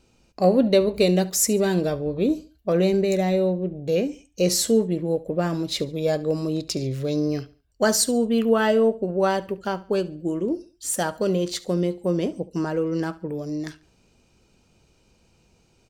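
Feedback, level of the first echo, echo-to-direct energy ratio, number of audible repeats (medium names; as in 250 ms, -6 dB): 33%, -19.5 dB, -19.0 dB, 2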